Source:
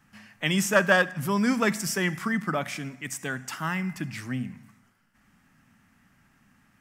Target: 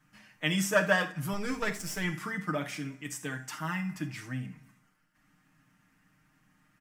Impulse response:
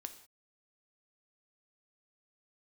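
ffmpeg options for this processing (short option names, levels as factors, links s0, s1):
-filter_complex "[0:a]asettb=1/sr,asplit=3[s0][s1][s2];[s0]atrim=end=1.334[s3];[s1]atrim=start=1.33:end=2.04,asetpts=PTS-STARTPTS,afade=t=in:d=0.004:c=qsin,afade=t=out:st=0.706:d=0.004:c=qsin,aeval=exprs='if(lt(val(0),0),0.251*val(0),val(0))':c=same[s4];[s2]atrim=start=2.036[s5];[s3][s4]acrossfade=d=0.004:c1=hsin:c2=qsin[s6];[s6][s5]acrossfade=d=0.004:c1=qsin:c2=hsin,aecho=1:1:6.5:0.78[s7];[1:a]atrim=start_sample=2205,atrim=end_sample=3969[s8];[s7][s8]afir=irnorm=-1:irlink=0,volume=0.75"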